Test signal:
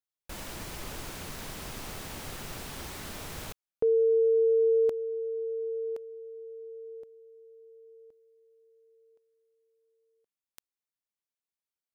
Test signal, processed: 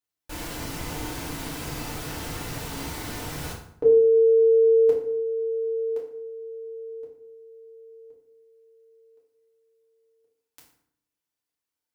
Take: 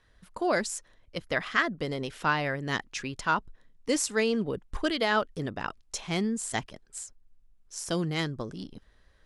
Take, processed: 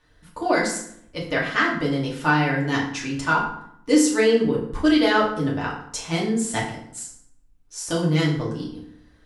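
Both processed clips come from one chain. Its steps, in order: FDN reverb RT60 0.68 s, low-frequency decay 1.3×, high-frequency decay 0.7×, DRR -5 dB

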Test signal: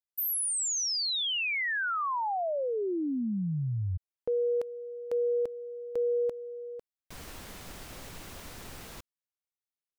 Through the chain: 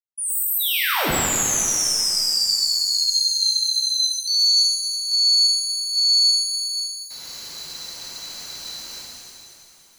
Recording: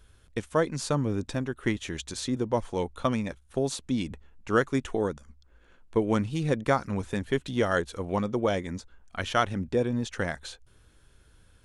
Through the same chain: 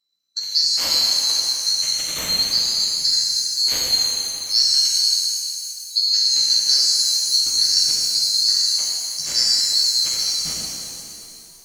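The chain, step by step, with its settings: band-swap scrambler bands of 4000 Hz; reverse; upward compressor, threshold -46 dBFS; reverse; spectral noise reduction 26 dB; shimmer reverb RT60 2.6 s, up +7 st, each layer -8 dB, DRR -5.5 dB; gain +2.5 dB

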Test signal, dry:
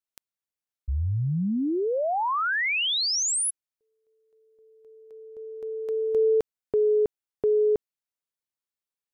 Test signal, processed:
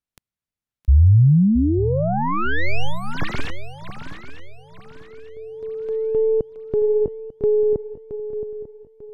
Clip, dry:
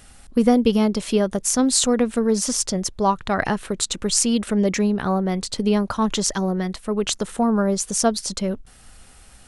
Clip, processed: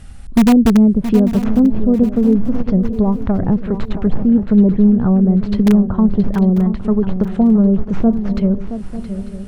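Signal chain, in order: tracing distortion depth 0.27 ms; treble ducked by the level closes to 500 Hz, closed at -17.5 dBFS; tone controls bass +13 dB, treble -5 dB; in parallel at -9 dB: wrapped overs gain 5 dB; on the sum: swung echo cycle 0.895 s, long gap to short 3:1, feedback 34%, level -11 dB; gain -1 dB

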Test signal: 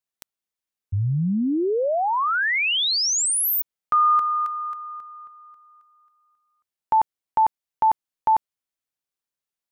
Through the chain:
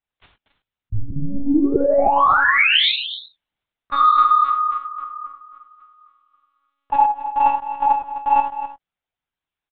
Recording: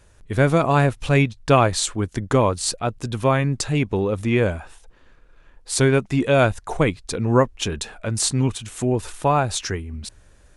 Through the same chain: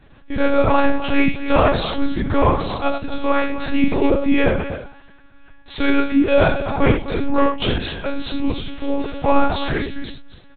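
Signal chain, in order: in parallel at -0.5 dB: limiter -14.5 dBFS; on the sum: sine folder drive 3 dB, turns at -0.5 dBFS; chorus voices 2, 1.1 Hz, delay 30 ms, depth 3.8 ms; on a send: echo 0.255 s -12 dB; on the sum: non-linear reverb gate 0.12 s flat, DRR 2.5 dB; monotone LPC vocoder at 8 kHz 280 Hz; gain -5 dB

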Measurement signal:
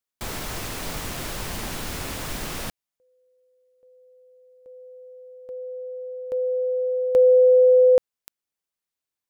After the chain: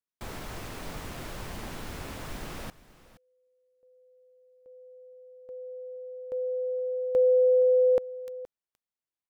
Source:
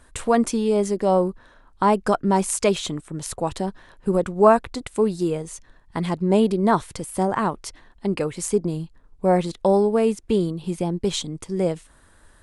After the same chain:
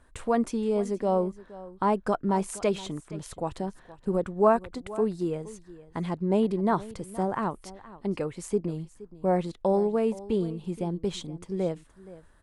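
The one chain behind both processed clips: high shelf 3000 Hz -8 dB; on a send: echo 0.471 s -18 dB; on the sum: gain -6 dB

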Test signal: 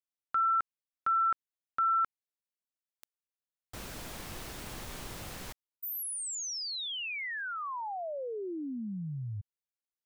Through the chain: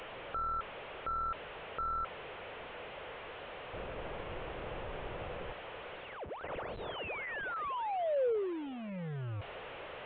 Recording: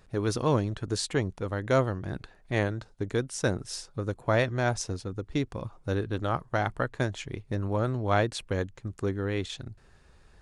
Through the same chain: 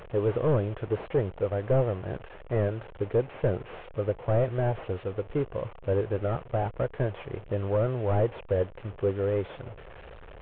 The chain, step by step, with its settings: delta modulation 16 kbps, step -40 dBFS; ten-band EQ 250 Hz -7 dB, 500 Hz +10 dB, 2000 Hz -3 dB

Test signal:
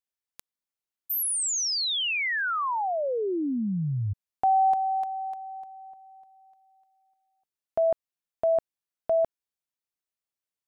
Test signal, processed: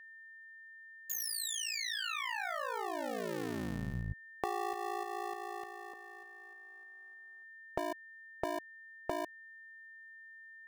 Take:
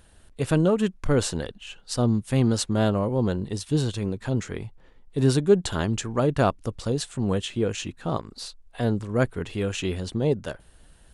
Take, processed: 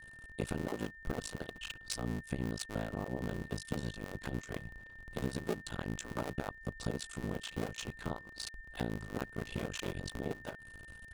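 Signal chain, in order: cycle switcher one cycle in 2, muted; compressor 4:1, threshold -35 dBFS; ring modulator 28 Hz; whine 1800 Hz -53 dBFS; gain +2 dB

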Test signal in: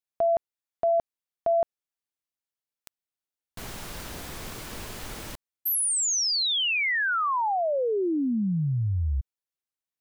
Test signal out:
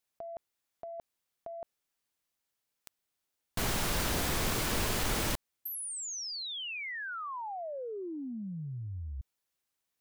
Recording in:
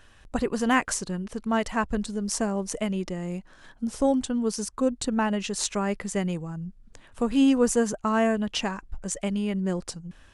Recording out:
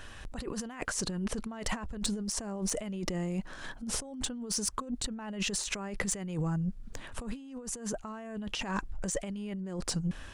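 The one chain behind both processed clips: negative-ratio compressor -36 dBFS, ratio -1; soft clip -20 dBFS

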